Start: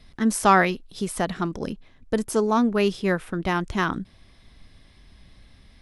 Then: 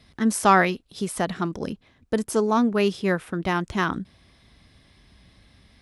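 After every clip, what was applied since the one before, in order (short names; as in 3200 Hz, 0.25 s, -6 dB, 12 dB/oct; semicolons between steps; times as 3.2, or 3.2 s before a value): HPF 59 Hz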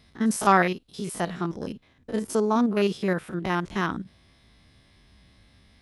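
stepped spectrum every 50 ms; gain -1 dB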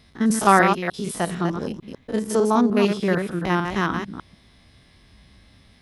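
reverse delay 0.15 s, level -6 dB; gain +3.5 dB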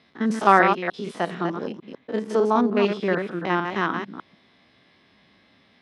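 BPF 240–3600 Hz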